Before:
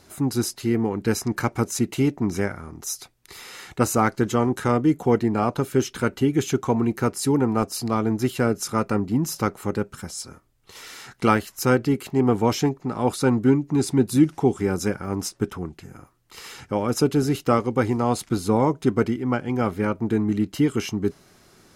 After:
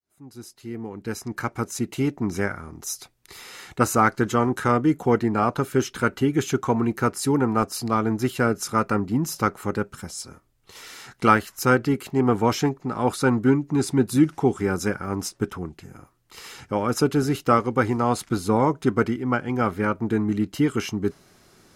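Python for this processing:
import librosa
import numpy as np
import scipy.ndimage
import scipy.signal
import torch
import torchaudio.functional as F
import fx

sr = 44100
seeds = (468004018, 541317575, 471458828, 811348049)

y = fx.fade_in_head(x, sr, length_s=2.52)
y = fx.dynamic_eq(y, sr, hz=1400.0, q=1.4, threshold_db=-39.0, ratio=4.0, max_db=6)
y = y * librosa.db_to_amplitude(-1.0)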